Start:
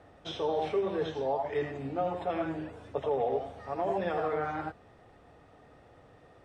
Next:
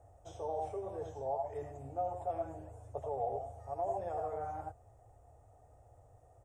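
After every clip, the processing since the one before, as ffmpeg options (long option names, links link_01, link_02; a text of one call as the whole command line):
ffmpeg -i in.wav -af "firequalizer=gain_entry='entry(110,0);entry(170,-22);entry(700,-4);entry(1100,-16);entry(1700,-23);entry(4100,-27);entry(6800,0)':delay=0.05:min_phase=1,volume=2dB" out.wav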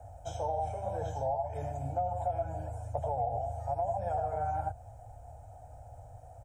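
ffmpeg -i in.wav -filter_complex "[0:a]aecho=1:1:1.3:0.93,acrossover=split=170[link_01][link_02];[link_02]acompressor=threshold=-38dB:ratio=4[link_03];[link_01][link_03]amix=inputs=2:normalize=0,volume=7dB" out.wav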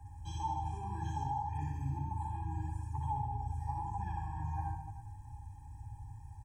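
ffmpeg -i in.wav -filter_complex "[0:a]asplit=2[link_01][link_02];[link_02]aecho=0:1:60|129|208.4|299.6|404.5:0.631|0.398|0.251|0.158|0.1[link_03];[link_01][link_03]amix=inputs=2:normalize=0,afftfilt=real='re*eq(mod(floor(b*sr/1024/390),2),0)':imag='im*eq(mod(floor(b*sr/1024/390),2),0)':win_size=1024:overlap=0.75,volume=1dB" out.wav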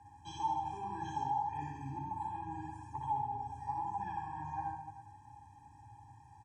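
ffmpeg -i in.wav -af "highpass=230,lowpass=5800,volume=3dB" out.wav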